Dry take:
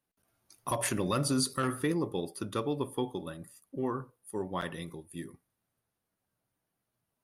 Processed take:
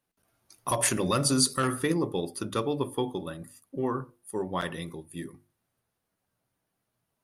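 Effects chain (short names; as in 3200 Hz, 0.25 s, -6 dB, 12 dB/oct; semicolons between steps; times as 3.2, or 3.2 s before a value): high shelf 11000 Hz -3.5 dB; notches 50/100/150/200/250/300/350 Hz; dynamic EQ 7700 Hz, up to +6 dB, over -50 dBFS, Q 0.72; gain +4 dB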